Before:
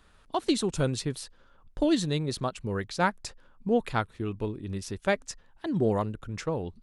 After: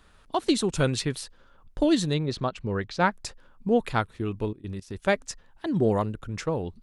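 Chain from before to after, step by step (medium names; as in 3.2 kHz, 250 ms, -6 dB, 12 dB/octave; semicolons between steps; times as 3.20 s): 0.72–1.21 s: dynamic bell 2.2 kHz, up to +6 dB, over -46 dBFS, Q 0.74; 2.14–3.12 s: low-pass 4.7 kHz 12 dB/octave; 4.51–4.96 s: level held to a coarse grid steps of 18 dB; trim +2.5 dB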